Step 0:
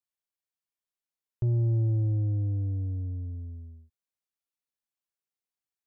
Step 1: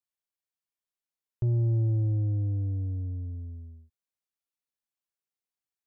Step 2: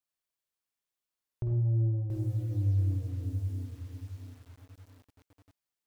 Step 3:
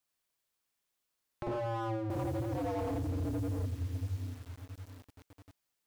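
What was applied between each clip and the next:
nothing audible
compressor 2:1, threshold -36 dBFS, peak gain reduction 6.5 dB; on a send at -1.5 dB: reverb RT60 0.70 s, pre-delay 44 ms; on the sum: lo-fi delay 0.68 s, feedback 35%, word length 9-bit, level -7 dB
wavefolder -35.5 dBFS; gain +6 dB

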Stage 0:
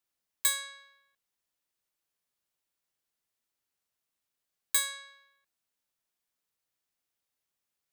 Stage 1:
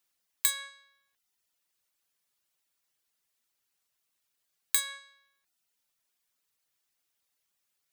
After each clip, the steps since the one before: compressor 6:1, threshold -31 dBFS, peak gain reduction 9.5 dB; reverb removal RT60 0.69 s; tilt shelf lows -3 dB, about 1100 Hz; gain +5 dB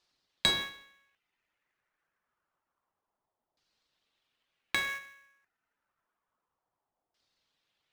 LFO low-pass saw down 0.28 Hz 750–4700 Hz; in parallel at -8.5 dB: sample-rate reducer 4200 Hz, jitter 20%; on the sum: gain +2 dB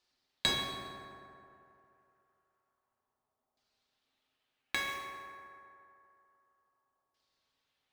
reverb RT60 2.9 s, pre-delay 4 ms, DRR 1 dB; gain -3.5 dB

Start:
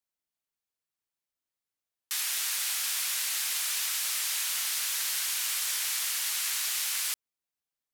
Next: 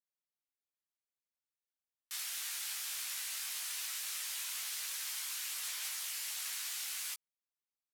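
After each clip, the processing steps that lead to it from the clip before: low shelf 200 Hz -9.5 dB; chorus voices 4, 0.64 Hz, delay 17 ms, depth 2.8 ms; gain -6.5 dB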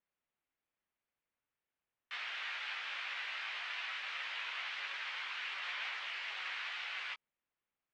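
LPF 2800 Hz 24 dB/oct; gain +8.5 dB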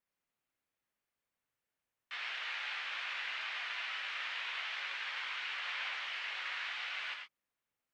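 non-linear reverb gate 0.13 s rising, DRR 4 dB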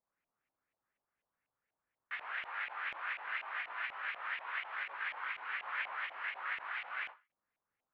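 high shelf 5600 Hz -4.5 dB; LFO low-pass saw up 4.1 Hz 710–2500 Hz; ending taper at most 190 dB/s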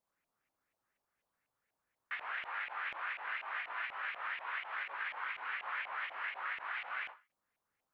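compressor, threshold -39 dBFS, peak gain reduction 6.5 dB; gain +3 dB

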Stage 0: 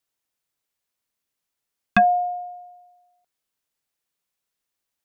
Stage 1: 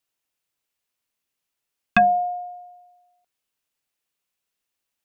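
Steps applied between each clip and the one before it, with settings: bell 2700 Hz +4 dB 0.4 oct; notches 50/100/150/200 Hz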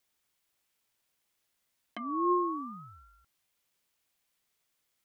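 negative-ratio compressor -28 dBFS, ratio -1; ring modulator with a swept carrier 510 Hz, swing 30%, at 0.64 Hz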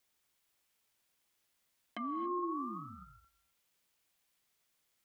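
limiter -31.5 dBFS, peak gain reduction 11.5 dB; non-linear reverb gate 0.3 s rising, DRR 11.5 dB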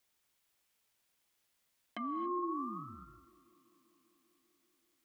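tape echo 0.195 s, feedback 89%, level -23 dB, low-pass 1600 Hz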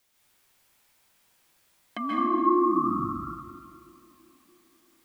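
plate-style reverb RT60 1.6 s, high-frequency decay 0.45×, pre-delay 0.12 s, DRR -5.5 dB; gain +7.5 dB

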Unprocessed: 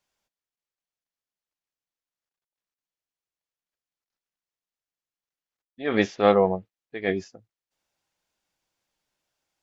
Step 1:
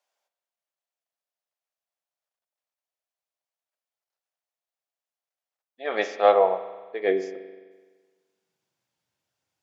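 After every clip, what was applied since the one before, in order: high-pass sweep 620 Hz -> 100 Hz, 6.52–9.16; spring tank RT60 1.4 s, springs 42 ms, chirp 25 ms, DRR 10 dB; gain -2.5 dB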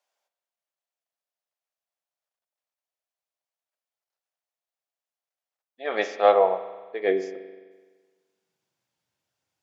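nothing audible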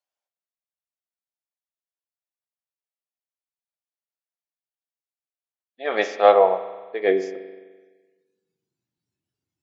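spectral noise reduction 15 dB; gain +3.5 dB

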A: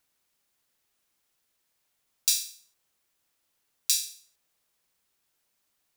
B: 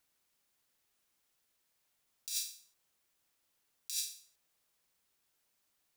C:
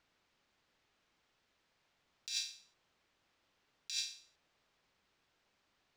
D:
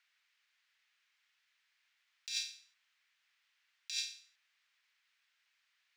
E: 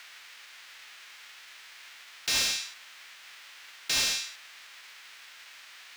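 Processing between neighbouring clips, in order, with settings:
negative-ratio compressor -30 dBFS, ratio -1; gain -7 dB
air absorption 170 m; gain +8.5 dB
resonant high-pass 1900 Hz, resonance Q 1.7; gain -1 dB
spectral whitening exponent 0.6; overdrive pedal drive 31 dB, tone 4700 Hz, clips at -23.5 dBFS; gain +6 dB

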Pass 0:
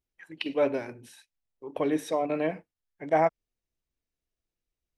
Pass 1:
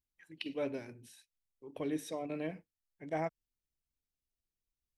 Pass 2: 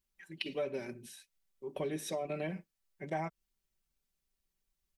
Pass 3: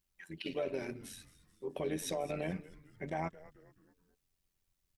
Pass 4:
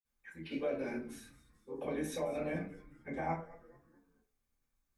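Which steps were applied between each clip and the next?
bell 910 Hz -10.5 dB 2.7 oct; gain -4 dB
comb 5.2 ms, depth 71%; compressor 6:1, threshold -37 dBFS, peak gain reduction 9 dB; gain +4.5 dB
limiter -29.5 dBFS, peak gain reduction 9.5 dB; AM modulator 89 Hz, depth 40%; frequency-shifting echo 0.216 s, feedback 47%, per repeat -150 Hz, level -18 dB; gain +4.5 dB
reverb RT60 0.40 s, pre-delay 46 ms; gain +10.5 dB

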